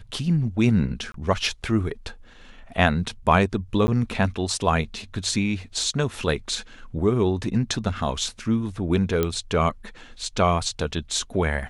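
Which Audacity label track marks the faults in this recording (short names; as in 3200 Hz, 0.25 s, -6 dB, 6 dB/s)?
1.120000	1.140000	gap 23 ms
3.870000	3.880000	gap 10 ms
9.230000	9.230000	pop -9 dBFS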